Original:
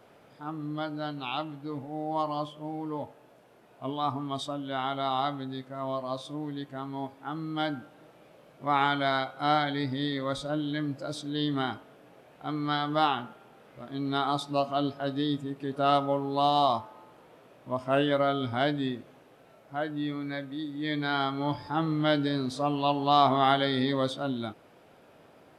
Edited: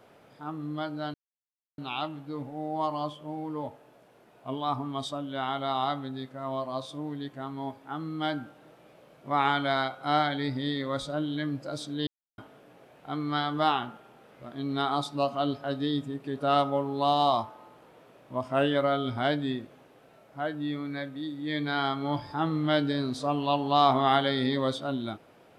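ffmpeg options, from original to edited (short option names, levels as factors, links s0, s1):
-filter_complex "[0:a]asplit=4[s0][s1][s2][s3];[s0]atrim=end=1.14,asetpts=PTS-STARTPTS,afade=t=out:st=1.136:d=0.004:c=hsin,apad=pad_dur=0.64[s4];[s1]atrim=start=1.14:end=11.43,asetpts=PTS-STARTPTS,afade=t=in:d=0.004:c=hsin,afade=t=out:st=10.286:d=0.004:c=hsin[s5];[s2]atrim=start=11.43:end=11.74,asetpts=PTS-STARTPTS,volume=0[s6];[s3]atrim=start=11.74,asetpts=PTS-STARTPTS,afade=t=in:d=0.004:c=hsin[s7];[s4][s5][s6][s7]concat=n=4:v=0:a=1"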